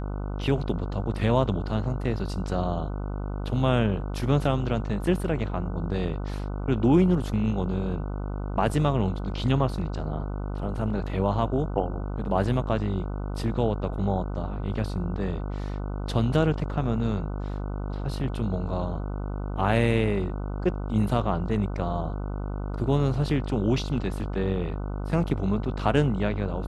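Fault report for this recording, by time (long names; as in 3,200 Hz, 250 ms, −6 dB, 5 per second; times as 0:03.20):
mains buzz 50 Hz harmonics 30 −31 dBFS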